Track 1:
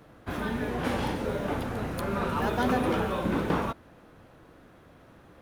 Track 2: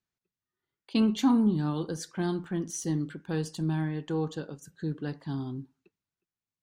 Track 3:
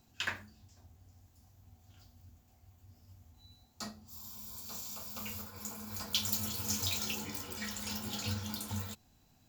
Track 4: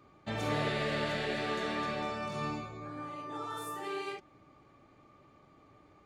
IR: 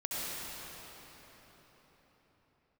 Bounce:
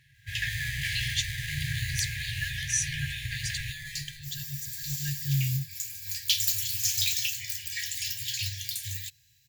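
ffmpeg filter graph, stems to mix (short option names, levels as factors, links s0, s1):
-filter_complex "[0:a]highpass=f=150:p=1,acompressor=threshold=0.0282:ratio=6,highshelf=f=9800:g=-5.5,volume=1.19[s0];[1:a]equalizer=f=1800:t=o:w=1.6:g=-6.5,alimiter=limit=0.075:level=0:latency=1:release=102,lowpass=8500,volume=1.19[s1];[2:a]highpass=140,asoftclip=type=hard:threshold=0.0631,adelay=150,volume=0.841[s2];[3:a]acrusher=samples=16:mix=1:aa=0.000001,volume=0.355[s3];[s0][s1][s2][s3]amix=inputs=4:normalize=0,dynaudnorm=f=160:g=5:m=3.16,afftfilt=real='re*(1-between(b*sr/4096,140,1600))':imag='im*(1-between(b*sr/4096,140,1600))':win_size=4096:overlap=0.75"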